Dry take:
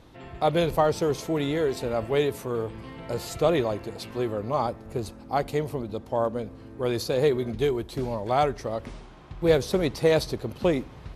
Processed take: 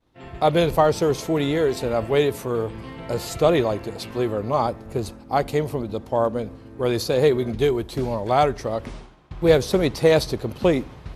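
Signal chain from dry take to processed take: expander -40 dBFS; gain +4.5 dB

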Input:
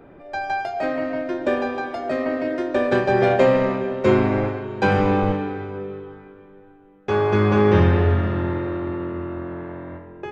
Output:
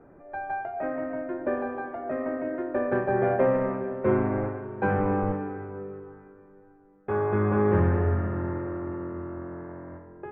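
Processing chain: LPF 1800 Hz 24 dB/oct; gain -6.5 dB

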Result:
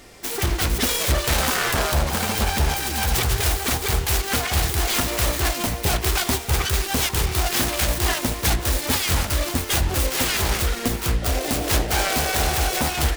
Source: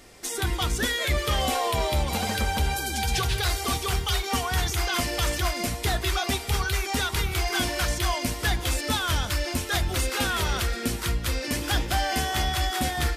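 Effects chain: self-modulated delay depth 0.66 ms; painted sound noise, 11.22–12.81, 330–790 Hz -37 dBFS; gain +5 dB

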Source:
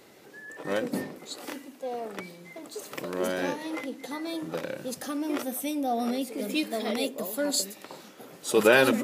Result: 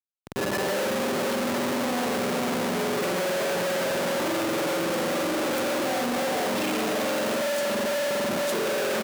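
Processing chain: comb 5.2 ms, depth 97%; darkening echo 0.454 s, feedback 49%, low-pass 4000 Hz, level -3.5 dB; compressor, threshold -25 dBFS, peak gain reduction 13 dB; bell 530 Hz +6.5 dB 0.54 oct; spring tank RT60 2.2 s, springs 45 ms, chirp 35 ms, DRR -8 dB; Schmitt trigger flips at -31 dBFS; HPF 160 Hz 12 dB/oct; gain -6 dB

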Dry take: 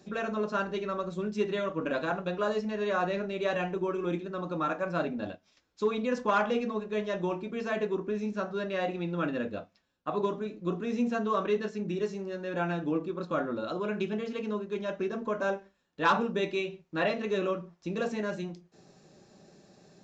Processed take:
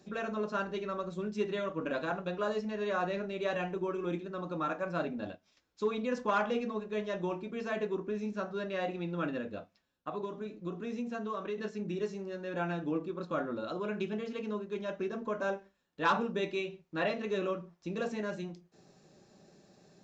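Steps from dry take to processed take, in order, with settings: 9.38–11.58 compressor 4:1, threshold -31 dBFS, peak gain reduction 7.5 dB; gain -3.5 dB

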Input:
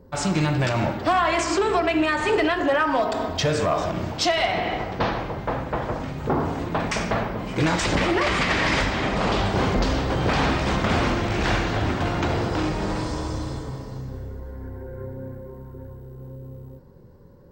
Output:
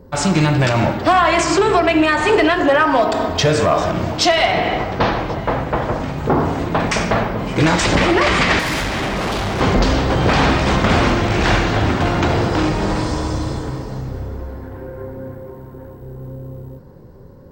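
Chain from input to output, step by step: 8.59–9.61 overloaded stage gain 26 dB; 14.56–16.02 low shelf 210 Hz -6.5 dB; darkening echo 1.085 s, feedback 50%, low-pass 1700 Hz, level -18 dB; gain +7 dB

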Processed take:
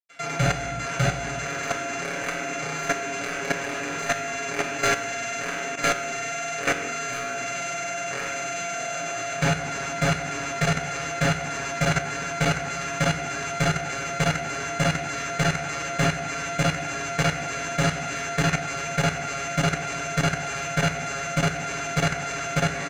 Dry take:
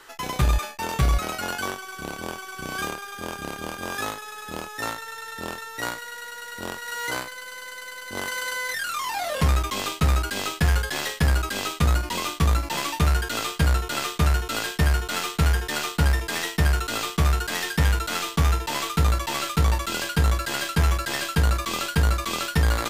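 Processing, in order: sample sorter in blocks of 64 samples; notch 610 Hz, Q 12; comb 7.1 ms, depth 94%; vocal rider 0.5 s; crossover distortion -32.5 dBFS; speaker cabinet 130–8400 Hz, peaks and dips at 1000 Hz -4 dB, 1600 Hz +9 dB, 2400 Hz +9 dB; overloaded stage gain 12 dB; reverb RT60 1.0 s, pre-delay 4 ms, DRR -2.5 dB; level quantiser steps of 10 dB

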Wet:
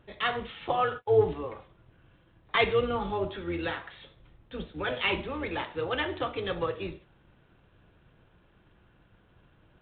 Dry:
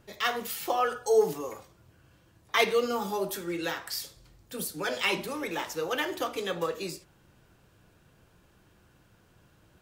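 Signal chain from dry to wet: octaver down 2 oct, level -4 dB; 0.68–1.46 gate -36 dBFS, range -26 dB; G.726 32 kbps 8000 Hz

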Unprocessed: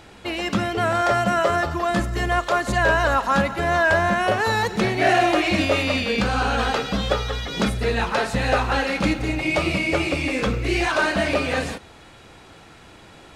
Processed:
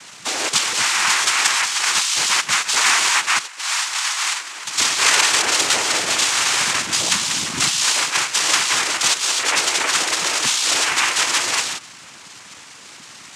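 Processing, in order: in parallel at 0 dB: compressor, threshold -27 dBFS, peak gain reduction 12.5 dB; 3.38–4.67 on the sum: vowel filter a; inverted band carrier 3500 Hz; noise vocoder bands 4

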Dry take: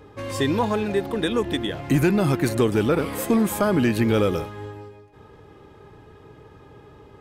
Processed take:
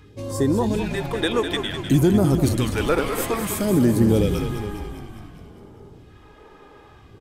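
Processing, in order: phaser stages 2, 0.57 Hz, lowest notch 100–2600 Hz; frequency-shifting echo 0.202 s, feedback 63%, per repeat -43 Hz, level -8 dB; gain +2 dB

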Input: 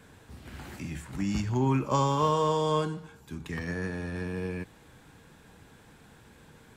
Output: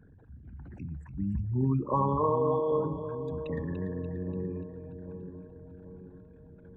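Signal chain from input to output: formant sharpening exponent 3; on a send: split-band echo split 680 Hz, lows 0.785 s, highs 0.291 s, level -9 dB; on the sum: gain -1.5 dB

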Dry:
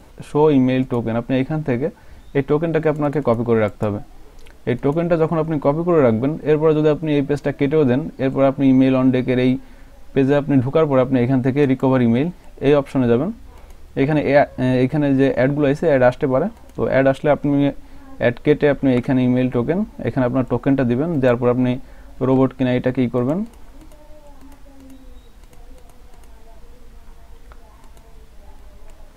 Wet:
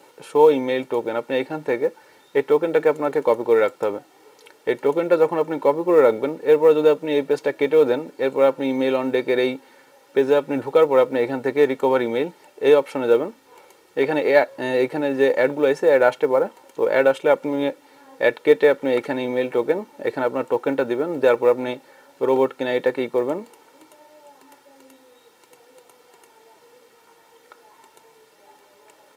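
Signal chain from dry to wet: Bessel high-pass 320 Hz, order 4; comb 2.2 ms, depth 61%; companded quantiser 8-bit; gain -1 dB

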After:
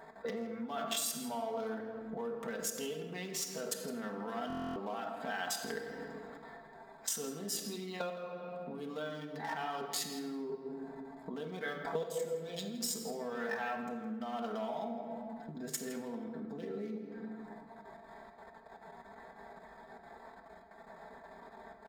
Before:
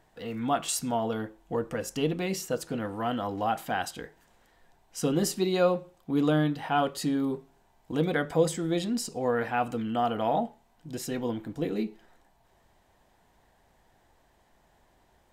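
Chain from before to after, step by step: Wiener smoothing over 15 samples; bell 3500 Hz +3 dB 0.23 oct; level quantiser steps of 22 dB; tempo 0.7×; high shelf 7000 Hz +4.5 dB; shoebox room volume 1400 m³, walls mixed, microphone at 1.2 m; compressor 5:1, threshold -52 dBFS, peak gain reduction 28 dB; HPF 680 Hz 6 dB/oct; comb 4.5 ms, depth 70%; outdoor echo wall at 28 m, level -15 dB; stuck buffer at 4.48, samples 1024, times 11; decimation joined by straight lines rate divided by 2×; gain +18 dB

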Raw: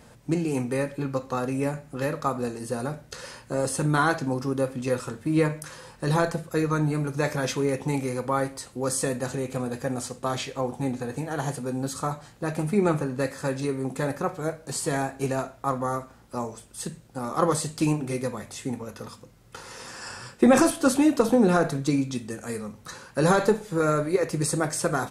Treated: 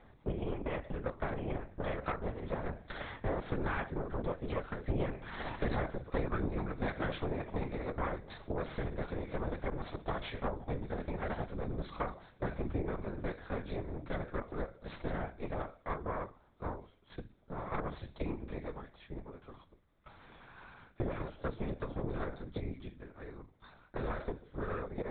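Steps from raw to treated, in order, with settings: Doppler pass-by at 5.82, 25 m/s, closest 21 m; HPF 130 Hz 24 dB/oct; compressor 10:1, threshold -46 dBFS, peak gain reduction 27.5 dB; added harmonics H 3 -20 dB, 5 -18 dB, 6 -13 dB, 7 -24 dB, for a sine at -30.5 dBFS; notch 2800 Hz, Q 5.5; LPC vocoder at 8 kHz whisper; gain +12.5 dB

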